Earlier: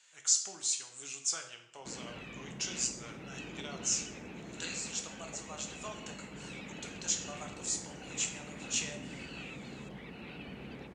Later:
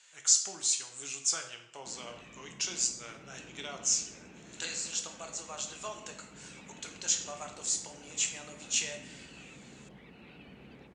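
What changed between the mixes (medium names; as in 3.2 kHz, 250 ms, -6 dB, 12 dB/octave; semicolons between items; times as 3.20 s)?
speech +3.5 dB; background -6.5 dB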